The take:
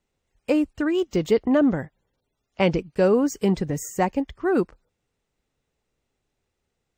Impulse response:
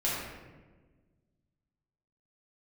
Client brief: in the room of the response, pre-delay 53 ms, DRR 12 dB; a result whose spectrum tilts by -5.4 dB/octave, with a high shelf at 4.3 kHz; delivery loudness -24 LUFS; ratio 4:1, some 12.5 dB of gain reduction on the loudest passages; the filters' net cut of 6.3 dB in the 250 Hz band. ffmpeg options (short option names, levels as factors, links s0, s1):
-filter_complex "[0:a]equalizer=f=250:t=o:g=-8.5,highshelf=f=4300:g=-6,acompressor=threshold=0.0224:ratio=4,asplit=2[s0][s1];[1:a]atrim=start_sample=2205,adelay=53[s2];[s1][s2]afir=irnorm=-1:irlink=0,volume=0.0944[s3];[s0][s3]amix=inputs=2:normalize=0,volume=4.22"